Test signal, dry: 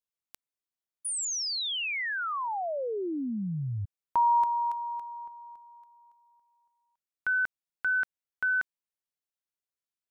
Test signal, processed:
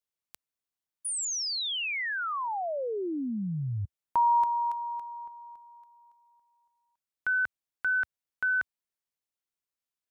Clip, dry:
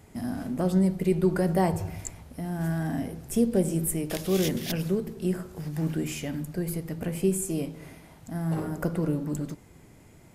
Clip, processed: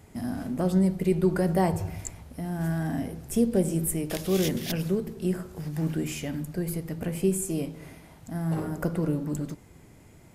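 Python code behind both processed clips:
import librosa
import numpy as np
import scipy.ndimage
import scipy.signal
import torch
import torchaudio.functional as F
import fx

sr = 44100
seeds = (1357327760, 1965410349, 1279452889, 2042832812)

y = fx.peak_eq(x, sr, hz=74.0, db=2.0, octaves=0.99)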